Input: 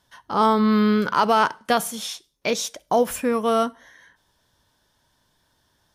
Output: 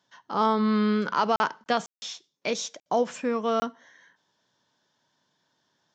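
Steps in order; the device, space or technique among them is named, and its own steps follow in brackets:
call with lost packets (high-pass filter 140 Hz 24 dB per octave; downsampling to 16,000 Hz; dropped packets of 20 ms bursts)
level −5 dB

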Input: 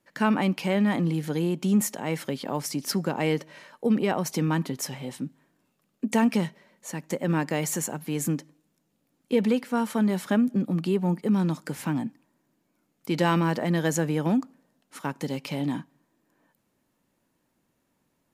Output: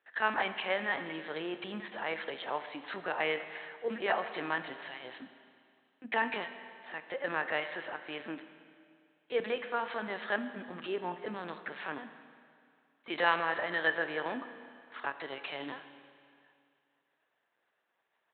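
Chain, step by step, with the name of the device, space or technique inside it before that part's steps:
talking toy (linear-prediction vocoder at 8 kHz pitch kept; high-pass filter 650 Hz 12 dB per octave; parametric band 1,700 Hz +7 dB 0.3 octaves)
four-comb reverb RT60 2.3 s, combs from 25 ms, DRR 10 dB

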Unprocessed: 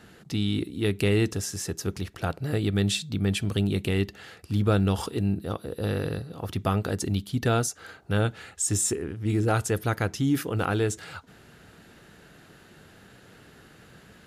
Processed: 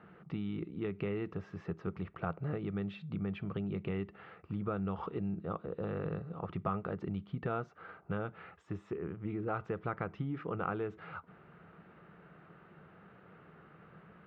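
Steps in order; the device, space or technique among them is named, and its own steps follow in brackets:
bass amplifier (downward compressor 4 to 1, threshold −27 dBFS, peak gain reduction 8.5 dB; loudspeaker in its box 73–2,200 Hz, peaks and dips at 74 Hz −5 dB, 110 Hz −7 dB, 170 Hz +6 dB, 260 Hz −8 dB, 1,200 Hz +7 dB, 1,700 Hz −6 dB)
level −4.5 dB

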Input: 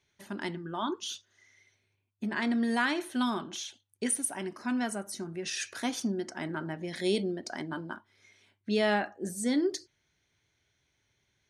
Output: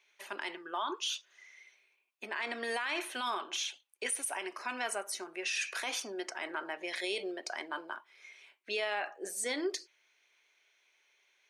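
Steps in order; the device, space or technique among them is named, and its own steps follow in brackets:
laptop speaker (high-pass filter 430 Hz 24 dB per octave; parametric band 1,100 Hz +4 dB 0.47 octaves; parametric band 2,500 Hz +10 dB 0.55 octaves; brickwall limiter −26.5 dBFS, peak gain reduction 13.5 dB)
level +1.5 dB

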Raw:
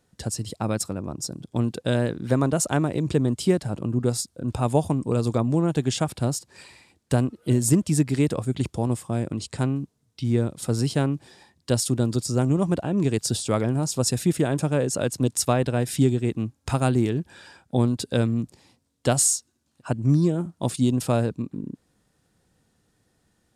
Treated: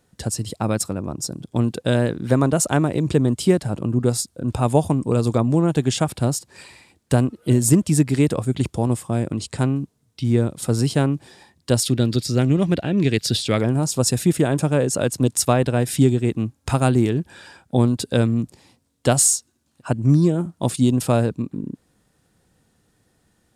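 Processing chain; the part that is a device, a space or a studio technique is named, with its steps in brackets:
exciter from parts (in parallel at −13 dB: high-pass filter 4,800 Hz + soft clipping −20 dBFS, distortion −13 dB + high-pass filter 4,200 Hz)
0:11.83–0:13.58: on the sum: octave-band graphic EQ 1,000/2,000/4,000/8,000 Hz −8/+7/+8/−8 dB
level +4 dB

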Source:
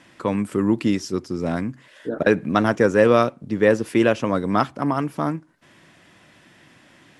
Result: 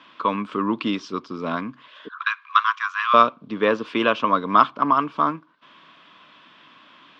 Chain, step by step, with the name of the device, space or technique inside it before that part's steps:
0:02.08–0:03.14: Chebyshev high-pass filter 1,000 Hz, order 8
phone earpiece (loudspeaker in its box 340–3,800 Hz, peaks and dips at 360 Hz −9 dB, 530 Hz −7 dB, 770 Hz −9 dB, 1,100 Hz +10 dB, 1,900 Hz −10 dB, 3,400 Hz +4 dB)
high-shelf EQ 8,700 Hz +5 dB
level +4.5 dB

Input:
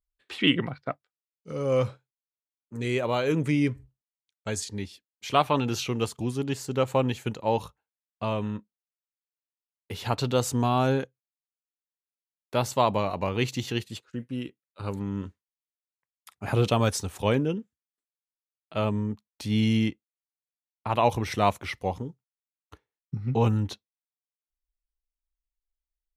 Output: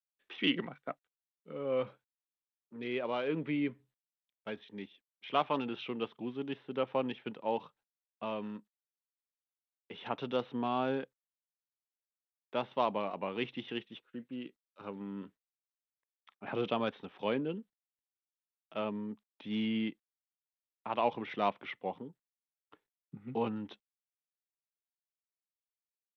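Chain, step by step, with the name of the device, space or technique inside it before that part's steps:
Bluetooth headset (high-pass filter 180 Hz 24 dB per octave; downsampling to 8,000 Hz; level −8 dB; SBC 64 kbit/s 32,000 Hz)

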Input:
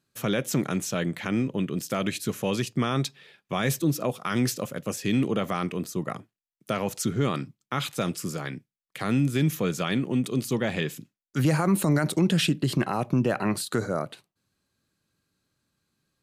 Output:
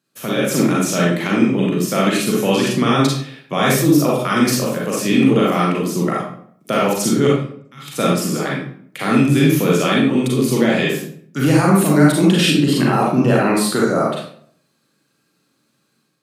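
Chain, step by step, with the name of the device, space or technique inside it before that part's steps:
0:07.27–0:07.88: guitar amp tone stack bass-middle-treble 6-0-2
far laptop microphone (convolution reverb RT60 0.60 s, pre-delay 35 ms, DRR −4.5 dB; high-pass filter 140 Hz 24 dB per octave; automatic gain control gain up to 6 dB)
level +1 dB

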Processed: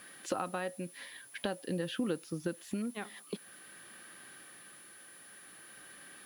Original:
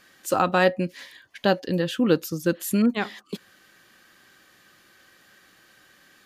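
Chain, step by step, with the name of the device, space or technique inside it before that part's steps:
medium wave at night (band-pass filter 120–3,900 Hz; downward compressor 6 to 1, threshold −34 dBFS, peak gain reduction 18.5 dB; amplitude tremolo 0.49 Hz, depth 36%; steady tone 10,000 Hz −56 dBFS; white noise bed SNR 23 dB)
level +2 dB

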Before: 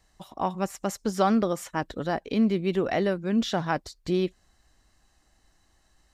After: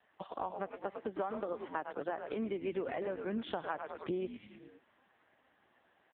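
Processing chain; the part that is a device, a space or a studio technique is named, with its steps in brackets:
0:00.69–0:02.72: high-pass filter 200 Hz 12 dB per octave
echo with shifted repeats 103 ms, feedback 44%, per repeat −130 Hz, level −8 dB
voicemail (band-pass filter 340–2,800 Hz; downward compressor 10 to 1, threshold −39 dBFS, peak gain reduction 20.5 dB; level +6 dB; AMR narrowband 5.15 kbit/s 8,000 Hz)

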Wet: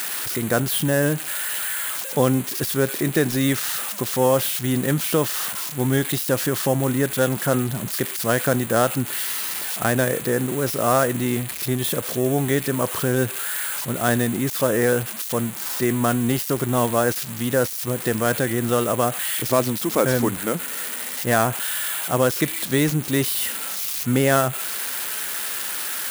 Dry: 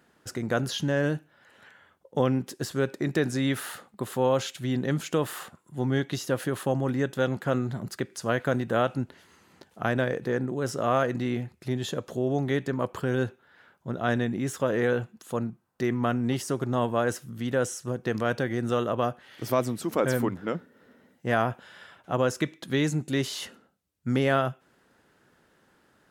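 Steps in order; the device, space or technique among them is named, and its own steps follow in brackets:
budget class-D amplifier (gap after every zero crossing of 0.089 ms; spike at every zero crossing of −17.5 dBFS)
level +5.5 dB

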